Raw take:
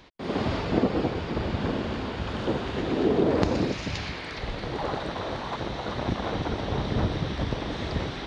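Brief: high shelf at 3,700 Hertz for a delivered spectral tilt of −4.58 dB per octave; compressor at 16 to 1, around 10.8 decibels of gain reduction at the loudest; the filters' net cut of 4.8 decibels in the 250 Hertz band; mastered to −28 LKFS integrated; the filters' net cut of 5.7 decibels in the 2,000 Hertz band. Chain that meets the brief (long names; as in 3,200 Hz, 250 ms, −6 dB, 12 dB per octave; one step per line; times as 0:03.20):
parametric band 250 Hz −6.5 dB
parametric band 2,000 Hz −9 dB
high-shelf EQ 3,700 Hz +6 dB
downward compressor 16 to 1, threshold −31 dBFS
level +8.5 dB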